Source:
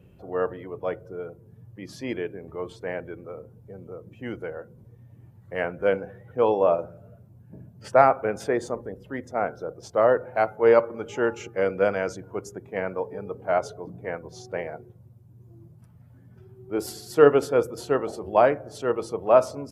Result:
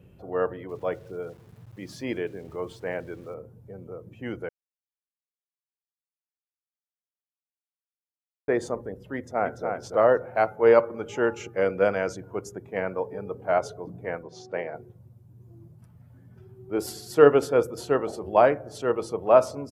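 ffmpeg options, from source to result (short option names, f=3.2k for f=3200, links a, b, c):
-filter_complex "[0:a]asettb=1/sr,asplit=3[a][b][c];[a]atrim=end=0.694[d];[b]atrim=start=0.69:end=3.34,asetpts=PTS-STARTPTS,afade=t=in:d=0.004:c=qsin,afade=t=out:st=2.646:d=0.004:c=qsin,aeval=exprs='val(0)*gte(abs(val(0)),0.00211)':c=same[e];[c]atrim=start=3.336[f];[d][e]acrossfade=d=0.004:c1=hsin:c2=qsin[g];[g][f]acrossfade=d=0.004:c1=qsin:c2=hsin,asplit=2[h][i];[i]afade=t=in:st=9.16:d=0.01,afade=t=out:st=9.68:d=0.01,aecho=0:1:290|580|870|1160:0.562341|0.168702|0.0506107|0.0151832[j];[h][j]amix=inputs=2:normalize=0,asettb=1/sr,asplit=3[k][l][m];[k]atrim=end=14.234[n];[l]atrim=start=14.23:end=14.75,asetpts=PTS-STARTPTS,afade=t=in:d=0.004:c=qsin,afade=t=out:st=0.516:d=0.004:c=qsin,highpass=170,lowpass=5.8k[o];[m]atrim=start=14.746[p];[n][o]acrossfade=d=0.004:c1=hsin:c2=qsin[q];[q][p]acrossfade=d=0.004:c1=qsin:c2=hsin,asplit=3[r][s][t];[r]atrim=end=4.49,asetpts=PTS-STARTPTS,afade=t=out:st=4.486:d=0.004:c=hsin[u];[s]atrim=start=4.49:end=8.48,asetpts=PTS-STARTPTS,volume=0[v];[t]atrim=start=8.48,asetpts=PTS-STARTPTS,afade=t=in:d=0.004:c=hsin[w];[u][v][w]concat=n=3:v=0:a=1"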